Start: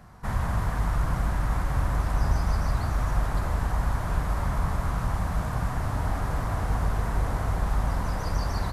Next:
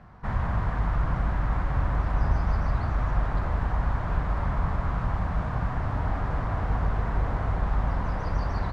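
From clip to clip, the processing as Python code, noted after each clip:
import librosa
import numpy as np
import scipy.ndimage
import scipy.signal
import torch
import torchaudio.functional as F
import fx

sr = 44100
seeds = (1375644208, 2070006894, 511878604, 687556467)

y = scipy.signal.sosfilt(scipy.signal.butter(2, 2900.0, 'lowpass', fs=sr, output='sos'), x)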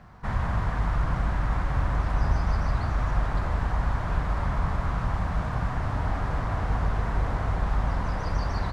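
y = fx.high_shelf(x, sr, hz=3900.0, db=10.5)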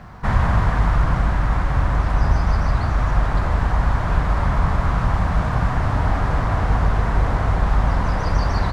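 y = fx.rider(x, sr, range_db=10, speed_s=2.0)
y = F.gain(torch.from_numpy(y), 7.5).numpy()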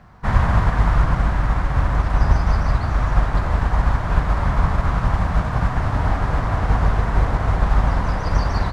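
y = fx.upward_expand(x, sr, threshold_db=-32.0, expansion=1.5)
y = F.gain(torch.from_numpy(y), 2.5).numpy()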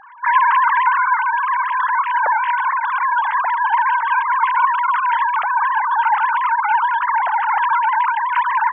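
y = fx.sine_speech(x, sr)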